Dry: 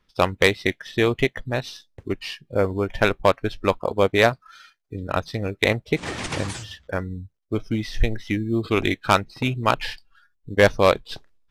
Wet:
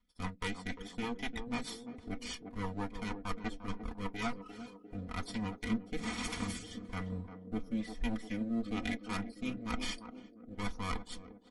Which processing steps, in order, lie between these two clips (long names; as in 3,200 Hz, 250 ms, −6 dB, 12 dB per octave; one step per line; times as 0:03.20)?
lower of the sound and its delayed copy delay 0.9 ms
parametric band 12,000 Hz +15 dB 0.26 octaves
comb filter 4.1 ms, depth 69%
reversed playback
downward compressor 10 to 1, threshold −27 dBFS, peak gain reduction 17.5 dB
reversed playback
feedback echo with a band-pass in the loop 349 ms, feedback 70%, band-pass 380 Hz, level −6.5 dB
on a send at −9.5 dB: convolution reverb RT60 0.15 s, pre-delay 3 ms
on the sum: rotating-speaker cabinet horn 6.3 Hz, later 1.1 Hz, at 0:04.09
level −6 dB
MP3 48 kbit/s 48,000 Hz